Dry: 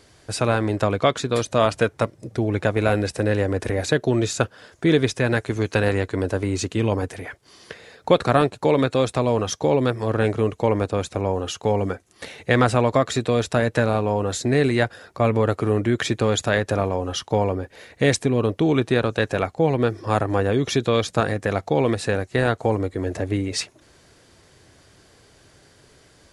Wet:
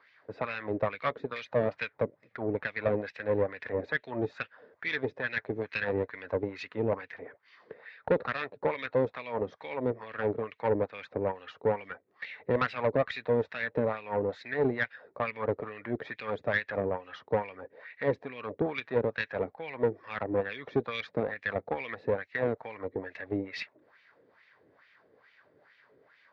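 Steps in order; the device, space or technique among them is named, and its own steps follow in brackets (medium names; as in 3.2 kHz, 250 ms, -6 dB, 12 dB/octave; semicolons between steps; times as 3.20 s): wah-wah guitar rig (wah-wah 2.3 Hz 370–2600 Hz, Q 2.5; valve stage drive 19 dB, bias 0.6; cabinet simulation 84–4100 Hz, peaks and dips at 350 Hz -8 dB, 720 Hz -5 dB, 1.9 kHz +5 dB, 3 kHz -6 dB); dynamic bell 1.3 kHz, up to -5 dB, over -48 dBFS, Q 1.1; trim +4 dB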